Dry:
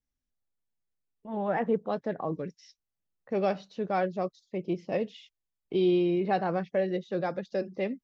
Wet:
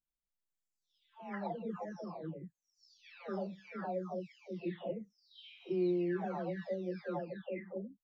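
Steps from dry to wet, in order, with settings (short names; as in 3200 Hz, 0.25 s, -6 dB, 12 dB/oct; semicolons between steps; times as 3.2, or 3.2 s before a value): spectral delay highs early, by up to 0.95 s; gain -7.5 dB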